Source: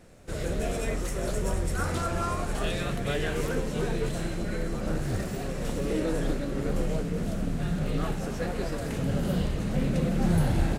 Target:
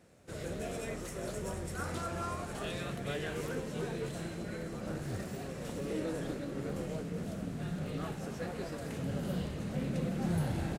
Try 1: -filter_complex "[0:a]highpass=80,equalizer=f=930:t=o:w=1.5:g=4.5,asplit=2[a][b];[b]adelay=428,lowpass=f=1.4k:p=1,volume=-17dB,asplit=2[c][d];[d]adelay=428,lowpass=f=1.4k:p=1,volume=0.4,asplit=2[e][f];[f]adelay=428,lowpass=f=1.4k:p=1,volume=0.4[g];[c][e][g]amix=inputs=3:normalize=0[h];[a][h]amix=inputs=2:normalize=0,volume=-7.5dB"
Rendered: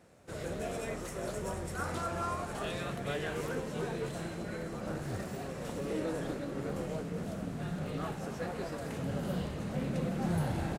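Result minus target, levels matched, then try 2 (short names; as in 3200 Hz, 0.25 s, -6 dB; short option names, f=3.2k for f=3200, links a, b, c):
1000 Hz band +2.5 dB
-filter_complex "[0:a]highpass=80,asplit=2[a][b];[b]adelay=428,lowpass=f=1.4k:p=1,volume=-17dB,asplit=2[c][d];[d]adelay=428,lowpass=f=1.4k:p=1,volume=0.4,asplit=2[e][f];[f]adelay=428,lowpass=f=1.4k:p=1,volume=0.4[g];[c][e][g]amix=inputs=3:normalize=0[h];[a][h]amix=inputs=2:normalize=0,volume=-7.5dB"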